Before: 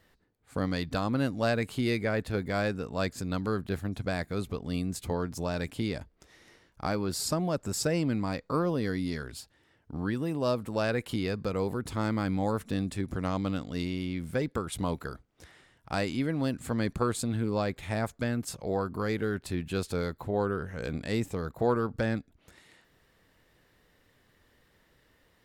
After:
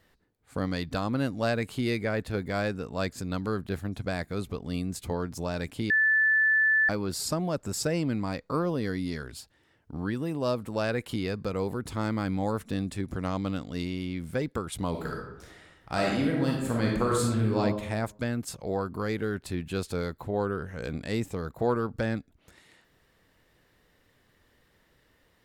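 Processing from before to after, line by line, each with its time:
5.90–6.89 s: bleep 1.75 kHz -19.5 dBFS
14.90–17.60 s: reverb throw, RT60 0.91 s, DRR -2 dB

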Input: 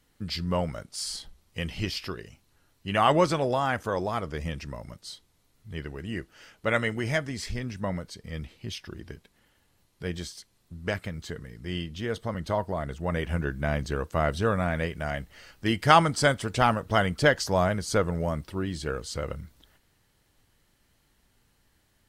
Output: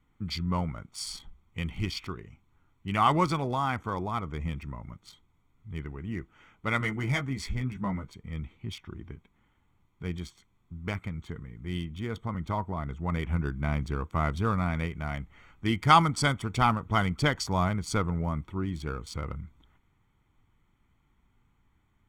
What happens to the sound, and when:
6.79–8.12 s: doubling 15 ms -4 dB
whole clip: local Wiener filter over 9 samples; comb 0.9 ms, depth 62%; trim -3 dB

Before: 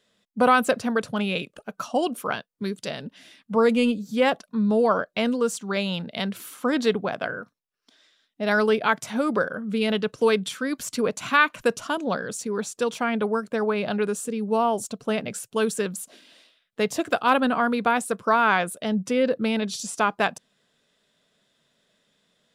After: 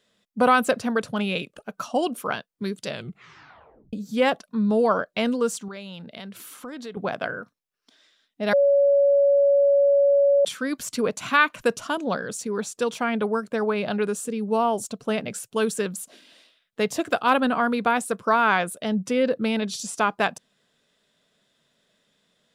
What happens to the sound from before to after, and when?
2.87 s: tape stop 1.06 s
5.68–6.97 s: compression 3:1, threshold -38 dBFS
8.53–10.45 s: bleep 563 Hz -14.5 dBFS

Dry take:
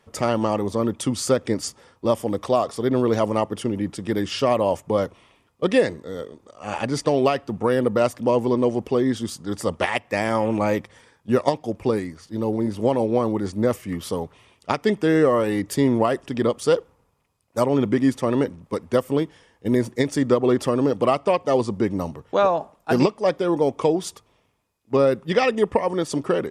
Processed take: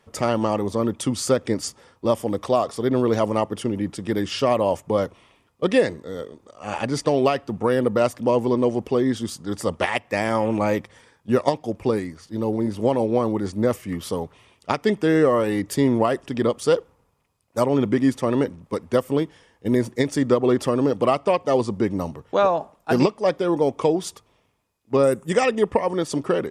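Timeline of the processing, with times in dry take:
25.03–25.45 s: resonant high shelf 5.8 kHz +10 dB, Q 3

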